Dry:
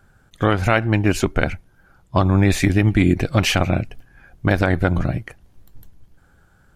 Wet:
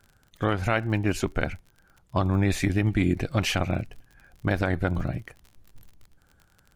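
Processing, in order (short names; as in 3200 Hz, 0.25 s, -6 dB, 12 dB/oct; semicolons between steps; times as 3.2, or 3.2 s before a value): crackle 41/s -32 dBFS; gain -7.5 dB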